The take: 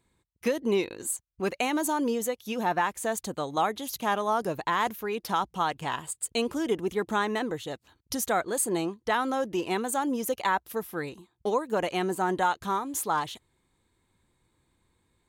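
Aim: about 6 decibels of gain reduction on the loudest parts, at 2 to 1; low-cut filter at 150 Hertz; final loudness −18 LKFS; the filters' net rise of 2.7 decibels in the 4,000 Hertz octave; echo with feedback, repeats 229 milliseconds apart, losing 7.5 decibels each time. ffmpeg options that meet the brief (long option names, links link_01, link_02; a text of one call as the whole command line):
ffmpeg -i in.wav -af "highpass=150,equalizer=frequency=4000:width_type=o:gain=3.5,acompressor=threshold=-32dB:ratio=2,aecho=1:1:229|458|687|916|1145:0.422|0.177|0.0744|0.0312|0.0131,volume=14.5dB" out.wav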